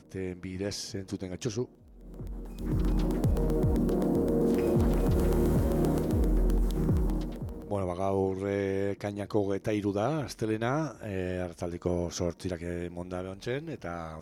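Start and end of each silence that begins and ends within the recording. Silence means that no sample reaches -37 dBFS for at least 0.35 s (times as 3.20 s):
1.65–2.13 s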